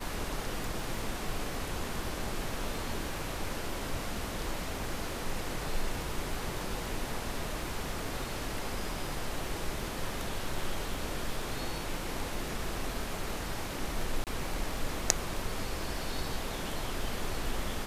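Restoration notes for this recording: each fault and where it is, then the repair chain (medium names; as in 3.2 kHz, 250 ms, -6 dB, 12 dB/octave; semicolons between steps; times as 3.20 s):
crackle 22 per s -40 dBFS
14.24–14.27 s: dropout 28 ms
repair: de-click; interpolate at 14.24 s, 28 ms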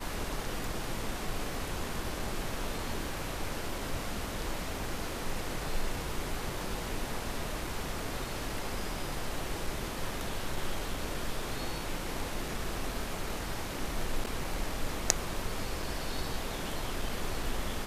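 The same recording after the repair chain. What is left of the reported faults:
nothing left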